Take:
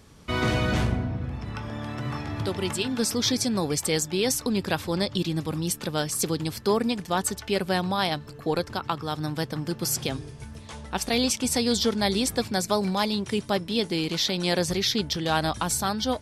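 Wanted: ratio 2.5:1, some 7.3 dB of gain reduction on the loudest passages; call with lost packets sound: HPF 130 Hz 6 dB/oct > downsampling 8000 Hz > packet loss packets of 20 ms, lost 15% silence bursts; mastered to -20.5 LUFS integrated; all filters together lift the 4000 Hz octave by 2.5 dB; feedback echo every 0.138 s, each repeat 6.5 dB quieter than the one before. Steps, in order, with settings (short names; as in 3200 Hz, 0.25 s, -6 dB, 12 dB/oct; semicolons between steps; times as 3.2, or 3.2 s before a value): bell 4000 Hz +3 dB; compressor 2.5:1, threshold -30 dBFS; HPF 130 Hz 6 dB/oct; feedback echo 0.138 s, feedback 47%, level -6.5 dB; downsampling 8000 Hz; packet loss packets of 20 ms, lost 15% silence bursts; gain +13.5 dB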